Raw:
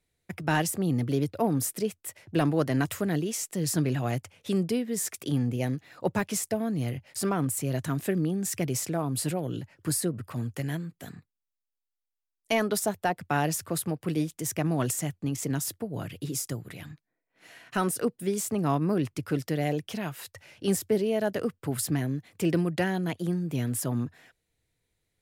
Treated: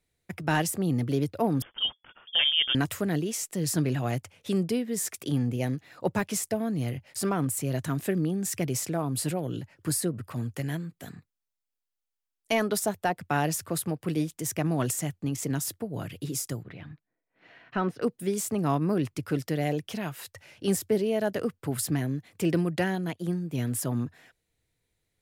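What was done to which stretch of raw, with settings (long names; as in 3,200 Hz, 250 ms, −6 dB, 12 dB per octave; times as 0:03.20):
0:01.62–0:02.75: voice inversion scrambler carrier 3,400 Hz
0:16.63–0:18.02: high-frequency loss of the air 290 metres
0:22.95–0:23.58: expander for the loud parts, over −42 dBFS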